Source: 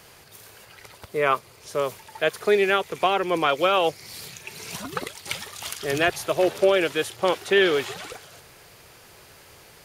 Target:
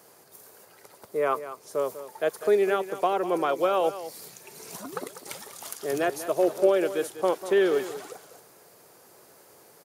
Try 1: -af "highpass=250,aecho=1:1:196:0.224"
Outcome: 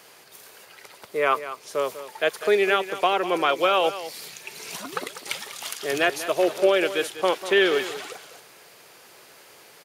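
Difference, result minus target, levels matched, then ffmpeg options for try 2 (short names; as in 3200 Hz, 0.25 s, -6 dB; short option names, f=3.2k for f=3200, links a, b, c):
2000 Hz band +7.5 dB
-af "highpass=250,equalizer=f=2.8k:w=0.65:g=-14,aecho=1:1:196:0.224"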